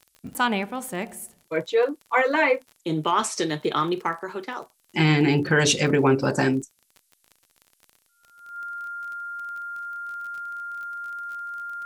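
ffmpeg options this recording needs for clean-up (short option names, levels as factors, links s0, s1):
-af "adeclick=t=4,bandreject=f=1400:w=30,agate=range=0.0891:threshold=0.00126"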